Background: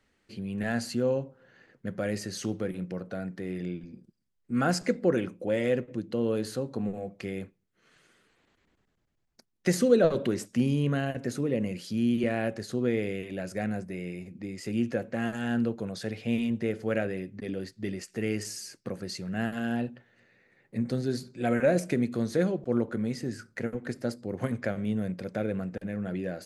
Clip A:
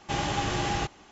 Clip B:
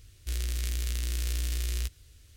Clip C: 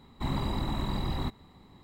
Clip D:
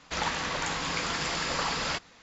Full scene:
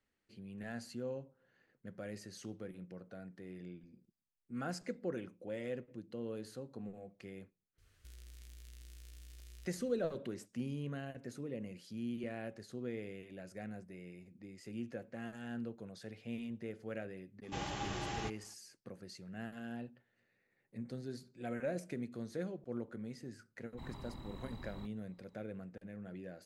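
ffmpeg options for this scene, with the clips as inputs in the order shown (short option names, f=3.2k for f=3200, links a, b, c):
-filter_complex "[0:a]volume=-14.5dB[a];[2:a]acompressor=threshold=-36dB:ratio=6:attack=3.2:release=140:knee=1:detection=peak,atrim=end=2.36,asetpts=PTS-STARTPTS,volume=-15.5dB,afade=t=in:d=0.004:c=hsin,afade=t=out:st=2.356:d=0.004:c=hsin,adelay=343098S[b];[1:a]atrim=end=1.11,asetpts=PTS-STARTPTS,volume=-12dB,afade=t=in:d=0.004:c=hsin,afade=t=out:st=1.106:d=0.004:c=hsin,adelay=17430[c];[3:a]atrim=end=1.83,asetpts=PTS-STARTPTS,volume=-18dB,afade=t=in:d=0.004:c=hsin,afade=t=out:st=1.826:d=0.004:c=hsin,adelay=23570[d];[a][b][c][d]amix=inputs=4:normalize=0"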